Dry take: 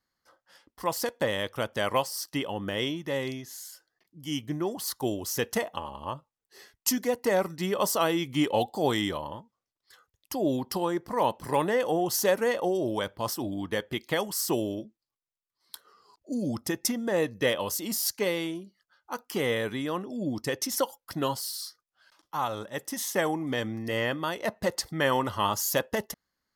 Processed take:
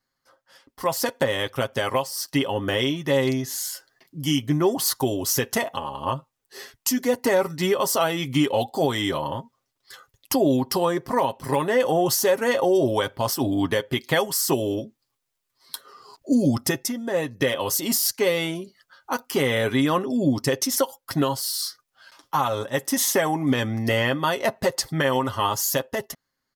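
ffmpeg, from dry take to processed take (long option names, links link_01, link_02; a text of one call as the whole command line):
ffmpeg -i in.wav -filter_complex "[0:a]asplit=3[link_01][link_02][link_03];[link_01]atrim=end=16.832[link_04];[link_02]atrim=start=16.828:end=17.402,asetpts=PTS-STARTPTS,volume=-9dB[link_05];[link_03]atrim=start=17.398[link_06];[link_04][link_05]acrossfade=duration=0.004:curve1=hsin:curve2=hsin[link_07];[link_07][link_06]acrossfade=duration=0.004:curve1=hsin:curve2=hsin,aecho=1:1:7.5:0.55,dynaudnorm=framelen=110:gausssize=17:maxgain=12dB,alimiter=limit=-12.5dB:level=0:latency=1:release=489,volume=1.5dB" out.wav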